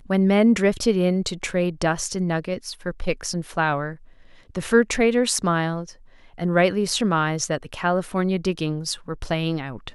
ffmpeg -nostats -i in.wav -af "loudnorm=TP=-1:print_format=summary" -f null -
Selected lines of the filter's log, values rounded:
Input Integrated:    -23.2 LUFS
Input True Peak:      -4.6 dBTP
Input LRA:             3.1 LU
Input Threshold:     -33.4 LUFS